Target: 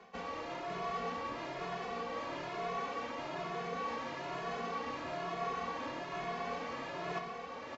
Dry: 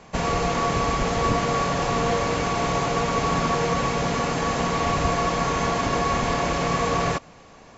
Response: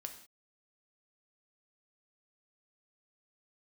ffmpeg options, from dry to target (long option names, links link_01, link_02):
-filter_complex "[0:a]acrossover=split=210 4900:gain=0.141 1 0.0794[link_01][link_02][link_03];[link_01][link_02][link_03]amix=inputs=3:normalize=0,areverse,acompressor=threshold=-38dB:ratio=6,areverse,aecho=1:1:562:0.531[link_04];[1:a]atrim=start_sample=2205[link_05];[link_04][link_05]afir=irnorm=-1:irlink=0,asplit=2[link_06][link_07];[link_07]adelay=2.3,afreqshift=1.1[link_08];[link_06][link_08]amix=inputs=2:normalize=1,volume=5.5dB"